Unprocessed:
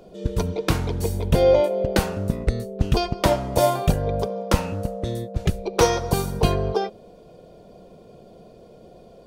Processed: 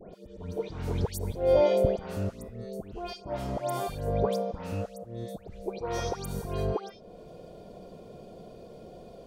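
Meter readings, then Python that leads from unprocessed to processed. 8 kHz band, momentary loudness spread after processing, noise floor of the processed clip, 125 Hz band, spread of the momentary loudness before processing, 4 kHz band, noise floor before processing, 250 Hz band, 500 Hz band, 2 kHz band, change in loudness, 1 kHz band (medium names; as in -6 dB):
-13.0 dB, 22 LU, -50 dBFS, -10.5 dB, 8 LU, -13.0 dB, -48 dBFS, -9.5 dB, -6.5 dB, -13.5 dB, -8.0 dB, -10.0 dB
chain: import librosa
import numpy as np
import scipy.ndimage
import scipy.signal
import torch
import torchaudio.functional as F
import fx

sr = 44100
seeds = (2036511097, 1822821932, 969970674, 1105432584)

y = fx.auto_swell(x, sr, attack_ms=391.0)
y = fx.dispersion(y, sr, late='highs', ms=140.0, hz=2200.0)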